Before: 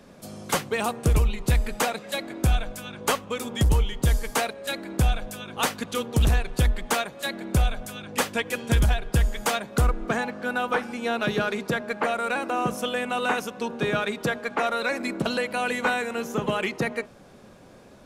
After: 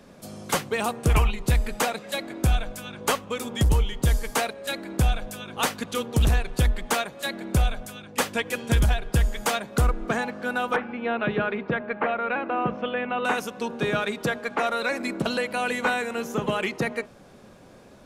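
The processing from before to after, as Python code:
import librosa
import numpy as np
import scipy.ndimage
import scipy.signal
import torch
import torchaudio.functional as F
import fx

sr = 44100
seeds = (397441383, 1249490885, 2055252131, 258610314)

y = fx.spec_box(x, sr, start_s=1.1, length_s=0.21, low_hz=630.0, high_hz=3300.0, gain_db=9)
y = fx.lowpass(y, sr, hz=2800.0, slope=24, at=(10.76, 13.25))
y = fx.edit(y, sr, fx.fade_out_to(start_s=7.71, length_s=0.47, floor_db=-6.5), tone=tone)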